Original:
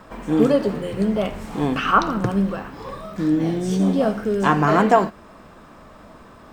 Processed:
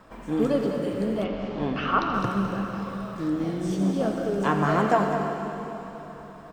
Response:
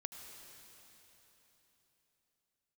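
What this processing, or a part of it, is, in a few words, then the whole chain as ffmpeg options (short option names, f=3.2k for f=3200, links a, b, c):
cave: -filter_complex "[0:a]aecho=1:1:207:0.335[a];[1:a]atrim=start_sample=2205[b];[a][b]afir=irnorm=-1:irlink=0,asettb=1/sr,asplit=3[c][d][e];[c]atrim=end=1.244[f];[d]atrim=start=1.24:end=2.14,asetpts=PTS-STARTPTS,afade=t=in:d=0.004:c=qsin,afade=t=out:st=0.896:d=0.004:c=qsin,lowpass=f=5.1k:w=0.5412,lowpass=f=5.1k:w=1.3066[g];[e]atrim=start=2.136[h];[f][g]acrossfade=d=0.004:c1=hsin:c2=qsin[i];[i][h]acrossfade=d=0.004:c1=qsin:c2=hsin,volume=-3dB"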